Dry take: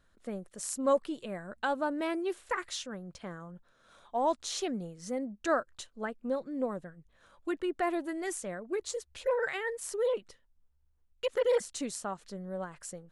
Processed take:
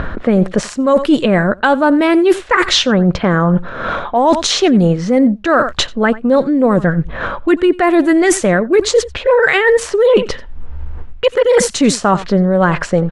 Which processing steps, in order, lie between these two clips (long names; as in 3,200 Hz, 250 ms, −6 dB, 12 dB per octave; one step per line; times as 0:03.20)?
dynamic equaliser 700 Hz, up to −4 dB, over −42 dBFS, Q 0.87
in parallel at +2.5 dB: upward compression, threshold −37 dBFS
on the sum: high-shelf EQ 5,200 Hz −11.5 dB
low-pass that shuts in the quiet parts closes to 1,800 Hz, open at −24 dBFS
single-tap delay 89 ms −22 dB
reversed playback
downward compressor 16 to 1, threshold −36 dBFS, peak gain reduction 19.5 dB
reversed playback
boost into a limiter +29.5 dB
level −1 dB
Opus 96 kbit/s 48,000 Hz